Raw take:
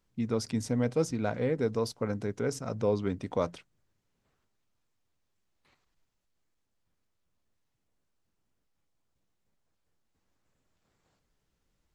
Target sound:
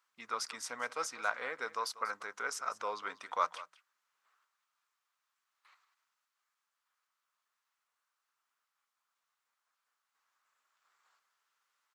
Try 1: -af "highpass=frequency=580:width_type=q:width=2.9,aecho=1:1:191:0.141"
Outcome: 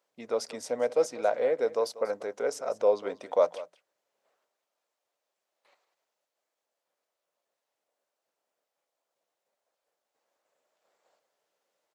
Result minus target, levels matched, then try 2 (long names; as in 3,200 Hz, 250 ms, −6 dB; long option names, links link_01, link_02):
500 Hz band +10.0 dB
-af "highpass=frequency=1200:width_type=q:width=2.9,aecho=1:1:191:0.141"